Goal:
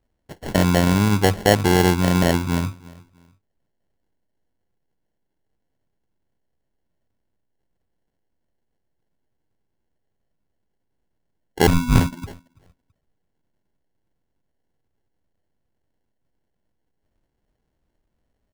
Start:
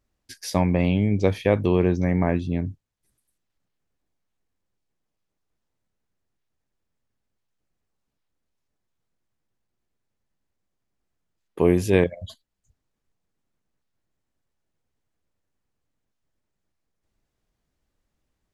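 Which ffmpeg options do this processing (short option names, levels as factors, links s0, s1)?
-filter_complex "[0:a]asettb=1/sr,asplit=3[s0][s1][s2];[s0]atrim=end=11.674[s3];[s1]atrim=start=11.67:end=12.24,asetpts=PTS-STARTPTS,afade=t=in:d=0.004:c=qsin,afade=t=out:st=0.566:d=0.004:c=qsin,lowpass=f=2400:t=q:w=0.5098,lowpass=f=2400:t=q:w=0.6013,lowpass=f=2400:t=q:w=0.9,lowpass=f=2400:t=q:w=2.563,afreqshift=-2800[s4];[s2]atrim=start=12.236[s5];[s3][s4]acrossfade=d=0.004:c1=hsin:c2=qsin[s6];[s6][s5]acrossfade=d=0.004:c1=qsin:c2=hsin,asplit=2[s7][s8];[s8]adelay=330,lowpass=f=1300:p=1,volume=0.0794,asplit=2[s9][s10];[s10]adelay=330,lowpass=f=1300:p=1,volume=0.31[s11];[s7][s9][s11]amix=inputs=3:normalize=0,acrusher=samples=36:mix=1:aa=0.000001,volume=1.5"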